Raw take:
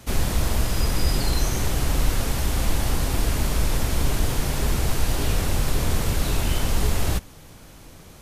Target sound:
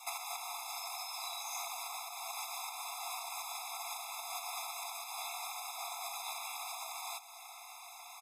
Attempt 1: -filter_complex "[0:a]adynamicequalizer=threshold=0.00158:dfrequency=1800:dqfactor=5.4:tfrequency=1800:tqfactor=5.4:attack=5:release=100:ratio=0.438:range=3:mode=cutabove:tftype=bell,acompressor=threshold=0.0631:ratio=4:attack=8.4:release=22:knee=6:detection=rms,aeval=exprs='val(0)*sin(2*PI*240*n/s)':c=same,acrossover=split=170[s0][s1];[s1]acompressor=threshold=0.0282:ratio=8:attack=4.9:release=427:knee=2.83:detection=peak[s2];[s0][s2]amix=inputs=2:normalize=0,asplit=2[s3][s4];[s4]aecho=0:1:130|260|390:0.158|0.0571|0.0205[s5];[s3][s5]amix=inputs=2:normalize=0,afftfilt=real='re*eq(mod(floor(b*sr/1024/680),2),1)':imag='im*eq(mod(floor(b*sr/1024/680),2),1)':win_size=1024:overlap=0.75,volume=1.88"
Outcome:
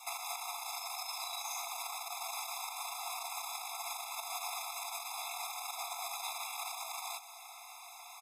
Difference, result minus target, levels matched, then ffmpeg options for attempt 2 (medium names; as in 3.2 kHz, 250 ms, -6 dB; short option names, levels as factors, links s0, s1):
compression: peak gain reduction +10.5 dB
-filter_complex "[0:a]adynamicequalizer=threshold=0.00158:dfrequency=1800:dqfactor=5.4:tfrequency=1800:tqfactor=5.4:attack=5:release=100:ratio=0.438:range=3:mode=cutabove:tftype=bell,aeval=exprs='val(0)*sin(2*PI*240*n/s)':c=same,acrossover=split=170[s0][s1];[s1]acompressor=threshold=0.0282:ratio=8:attack=4.9:release=427:knee=2.83:detection=peak[s2];[s0][s2]amix=inputs=2:normalize=0,asplit=2[s3][s4];[s4]aecho=0:1:130|260|390:0.158|0.0571|0.0205[s5];[s3][s5]amix=inputs=2:normalize=0,afftfilt=real='re*eq(mod(floor(b*sr/1024/680),2),1)':imag='im*eq(mod(floor(b*sr/1024/680),2),1)':win_size=1024:overlap=0.75,volume=1.88"